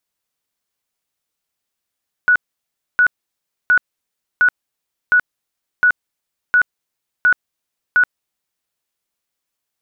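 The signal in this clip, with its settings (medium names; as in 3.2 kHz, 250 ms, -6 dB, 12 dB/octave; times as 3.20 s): tone bursts 1.47 kHz, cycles 113, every 0.71 s, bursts 9, -8.5 dBFS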